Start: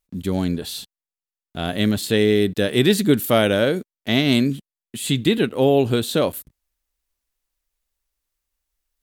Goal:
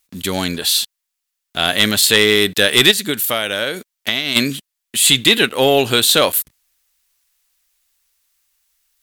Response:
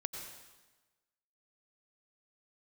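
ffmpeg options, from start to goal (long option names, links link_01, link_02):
-filter_complex "[0:a]tiltshelf=frequency=690:gain=-10,asplit=3[link_01][link_02][link_03];[link_01]afade=type=out:start_time=2.9:duration=0.02[link_04];[link_02]acompressor=threshold=-23dB:ratio=5,afade=type=in:start_time=2.9:duration=0.02,afade=type=out:start_time=4.35:duration=0.02[link_05];[link_03]afade=type=in:start_time=4.35:duration=0.02[link_06];[link_04][link_05][link_06]amix=inputs=3:normalize=0,aeval=exprs='1.26*sin(PI/2*2*val(0)/1.26)':channel_layout=same,volume=-3.5dB"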